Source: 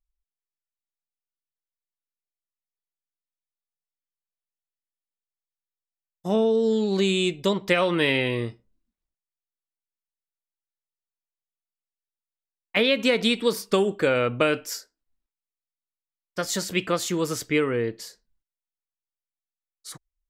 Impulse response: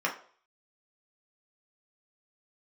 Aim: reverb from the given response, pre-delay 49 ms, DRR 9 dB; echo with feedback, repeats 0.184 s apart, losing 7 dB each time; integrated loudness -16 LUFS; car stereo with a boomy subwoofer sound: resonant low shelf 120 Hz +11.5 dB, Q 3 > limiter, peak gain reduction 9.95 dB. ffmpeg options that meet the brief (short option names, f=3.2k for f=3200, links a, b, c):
-filter_complex "[0:a]aecho=1:1:184|368|552|736|920:0.447|0.201|0.0905|0.0407|0.0183,asplit=2[a][b];[1:a]atrim=start_sample=2205,adelay=49[c];[b][c]afir=irnorm=-1:irlink=0,volume=-18.5dB[d];[a][d]amix=inputs=2:normalize=0,lowshelf=f=120:t=q:w=3:g=11.5,volume=11.5dB,alimiter=limit=-6dB:level=0:latency=1"